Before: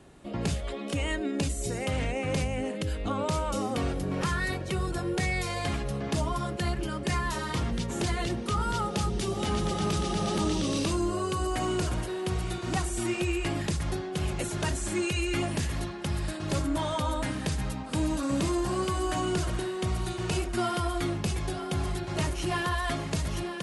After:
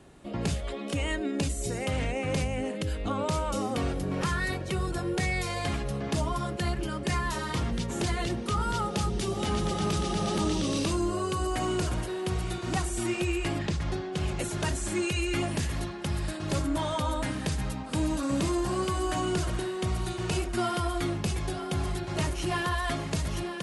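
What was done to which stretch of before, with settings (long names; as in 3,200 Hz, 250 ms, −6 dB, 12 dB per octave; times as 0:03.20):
0:13.58–0:14.38: low-pass filter 4,600 Hz → 9,800 Hz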